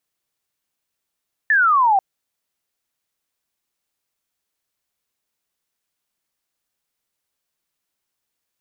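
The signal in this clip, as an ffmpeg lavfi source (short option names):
-f lavfi -i "aevalsrc='0.251*clip(t/0.002,0,1)*clip((0.49-t)/0.002,0,1)*sin(2*PI*1800*0.49/log(750/1800)*(exp(log(750/1800)*t/0.49)-1))':d=0.49:s=44100"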